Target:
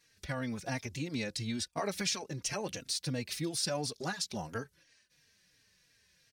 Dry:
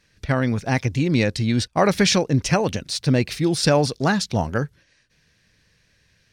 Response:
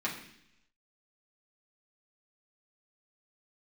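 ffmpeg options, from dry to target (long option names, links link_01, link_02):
-filter_complex "[0:a]highshelf=frequency=4800:gain=11.5,acompressor=threshold=-25dB:ratio=2.5,lowshelf=frequency=130:gain=-9,asplit=2[link_01][link_02];[link_02]adelay=3.7,afreqshift=-2.9[link_03];[link_01][link_03]amix=inputs=2:normalize=1,volume=-6dB"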